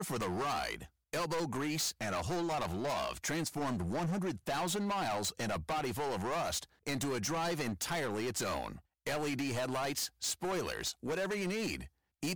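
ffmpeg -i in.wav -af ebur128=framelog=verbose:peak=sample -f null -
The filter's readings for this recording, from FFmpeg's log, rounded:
Integrated loudness:
  I:         -35.9 LUFS
  Threshold: -46.0 LUFS
Loudness range:
  LRA:         0.8 LU
  Threshold: -55.8 LUFS
  LRA low:   -36.3 LUFS
  LRA high:  -35.5 LUFS
Sample peak:
  Peak:      -31.8 dBFS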